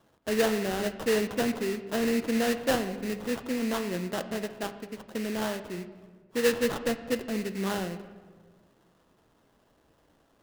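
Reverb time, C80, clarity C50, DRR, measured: 1.6 s, 13.0 dB, 12.0 dB, 9.0 dB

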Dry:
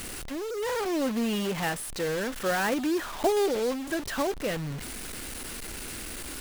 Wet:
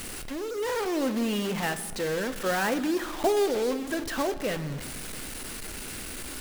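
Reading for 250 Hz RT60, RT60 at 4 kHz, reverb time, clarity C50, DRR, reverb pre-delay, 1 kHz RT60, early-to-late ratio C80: 2.0 s, 0.80 s, 1.5 s, 13.0 dB, 10.5 dB, 4 ms, 1.4 s, 14.5 dB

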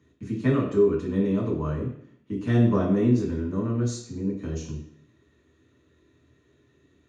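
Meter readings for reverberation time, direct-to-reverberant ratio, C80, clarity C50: 0.60 s, −5.0 dB, 9.5 dB, 6.0 dB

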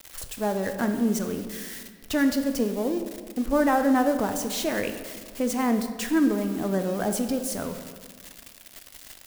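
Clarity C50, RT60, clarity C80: 8.5 dB, 1.7 s, 10.0 dB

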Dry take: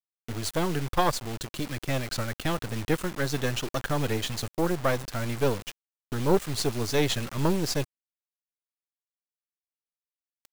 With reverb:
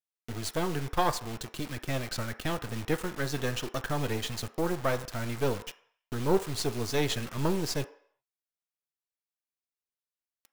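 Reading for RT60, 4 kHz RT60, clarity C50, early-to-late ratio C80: 0.60 s, 0.60 s, 15.0 dB, 18.0 dB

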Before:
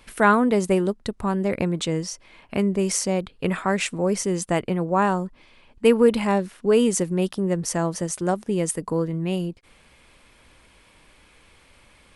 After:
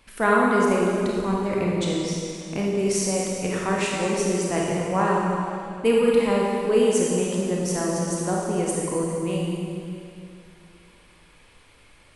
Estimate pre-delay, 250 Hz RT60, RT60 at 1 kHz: 27 ms, 2.7 s, 2.4 s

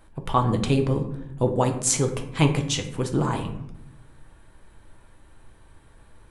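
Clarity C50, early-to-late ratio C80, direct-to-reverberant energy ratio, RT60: 10.0 dB, 12.5 dB, 4.0 dB, 0.80 s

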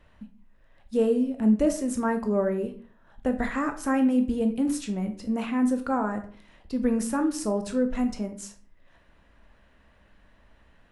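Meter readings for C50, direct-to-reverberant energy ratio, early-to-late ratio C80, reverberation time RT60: 11.5 dB, 6.0 dB, 16.0 dB, 0.45 s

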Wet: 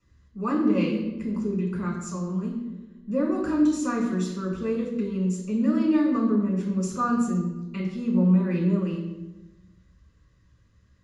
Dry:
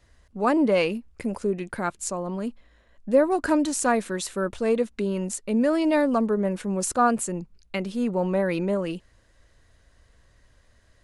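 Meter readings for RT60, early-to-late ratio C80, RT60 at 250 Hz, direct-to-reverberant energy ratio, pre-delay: 1.2 s, 6.5 dB, 1.4 s, −1.5 dB, 3 ms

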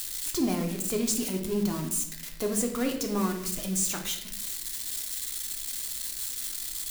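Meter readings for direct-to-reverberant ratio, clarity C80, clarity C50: 2.5 dB, 10.0 dB, 7.5 dB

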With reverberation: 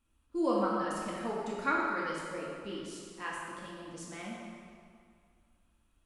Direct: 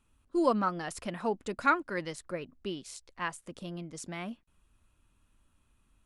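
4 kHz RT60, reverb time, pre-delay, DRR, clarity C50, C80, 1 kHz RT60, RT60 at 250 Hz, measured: 1.7 s, 2.1 s, 3 ms, −5.0 dB, −1.0 dB, 0.5 dB, 2.2 s, 2.1 s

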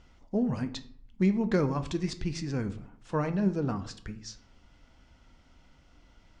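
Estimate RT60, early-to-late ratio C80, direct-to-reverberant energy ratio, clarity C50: 0.65 s, 17.5 dB, 9.0 dB, 14.0 dB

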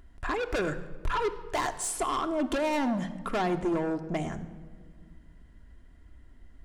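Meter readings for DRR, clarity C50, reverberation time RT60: 7.0 dB, 13.0 dB, non-exponential decay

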